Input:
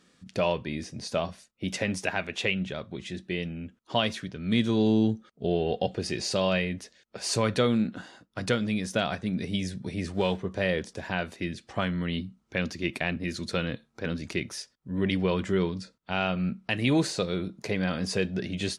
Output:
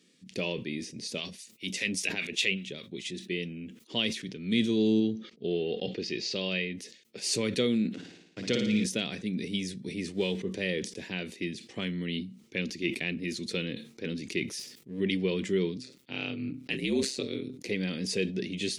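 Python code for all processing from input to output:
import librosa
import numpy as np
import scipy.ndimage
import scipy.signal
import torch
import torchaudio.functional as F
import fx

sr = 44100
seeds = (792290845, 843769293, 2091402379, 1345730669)

y = fx.chain(x, sr, fx.high_shelf(hz=2200.0, db=9.0),
    fx.harmonic_tremolo(hz=5.0, depth_pct=70, crossover_hz=880.0), at=(1.13, 3.26))
y = fx.chain(y, sr, fx.lowpass(hz=5400.0, slope=24),
    fx.low_shelf(hz=350.0, db=-3.5), at=(5.0, 6.75))
y = fx.chain(y, sr, fx.delta_hold(step_db=-45.5),
    fx.lowpass(hz=6900.0, slope=24),
    fx.room_flutter(wall_m=9.7, rt60_s=0.79), at=(7.94, 8.84))
y = fx.chain(y, sr, fx.halfwave_gain(db=-12.0),
    fx.sustainer(db_per_s=74.0), at=(14.59, 15.0))
y = fx.chain(y, sr, fx.ring_mod(carrier_hz=66.0),
    fx.sustainer(db_per_s=130.0), at=(15.77, 17.68))
y = scipy.signal.sosfilt(scipy.signal.butter(2, 200.0, 'highpass', fs=sr, output='sos'), y)
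y = fx.band_shelf(y, sr, hz=970.0, db=-15.0, octaves=1.7)
y = fx.sustainer(y, sr, db_per_s=110.0)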